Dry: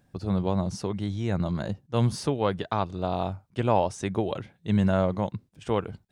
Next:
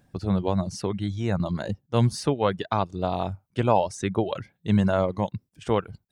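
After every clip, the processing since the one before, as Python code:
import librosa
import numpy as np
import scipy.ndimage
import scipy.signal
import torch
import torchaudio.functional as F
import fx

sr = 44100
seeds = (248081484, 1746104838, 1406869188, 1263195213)

y = fx.dereverb_blind(x, sr, rt60_s=0.69)
y = y * 10.0 ** (3.0 / 20.0)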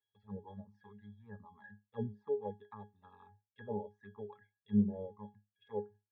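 y = fx.env_flanger(x, sr, rest_ms=2.2, full_db=-16.5)
y = fx.auto_wah(y, sr, base_hz=340.0, top_hz=3200.0, q=3.3, full_db=-17.5, direction='down')
y = fx.octave_resonator(y, sr, note='G#', decay_s=0.21)
y = y * 10.0 ** (8.0 / 20.0)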